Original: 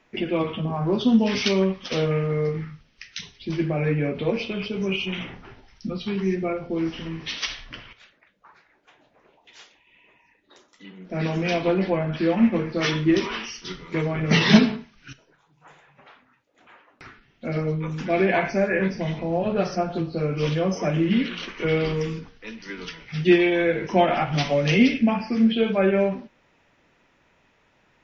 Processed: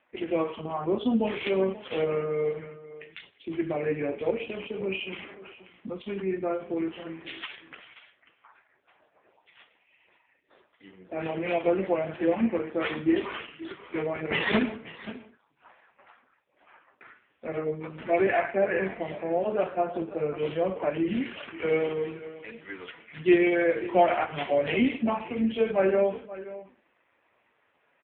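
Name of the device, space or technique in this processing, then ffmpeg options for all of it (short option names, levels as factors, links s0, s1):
satellite phone: -filter_complex "[0:a]asplit=3[s0][s1][s2];[s0]afade=t=out:st=11.19:d=0.02[s3];[s1]lowpass=f=5500:w=0.5412,lowpass=f=5500:w=1.3066,afade=t=in:st=11.19:d=0.02,afade=t=out:st=12.18:d=0.02[s4];[s2]afade=t=in:st=12.18:d=0.02[s5];[s3][s4][s5]amix=inputs=3:normalize=0,highpass=340,lowpass=3100,aecho=1:1:532:0.158" -ar 8000 -c:a libopencore_amrnb -b:a 5150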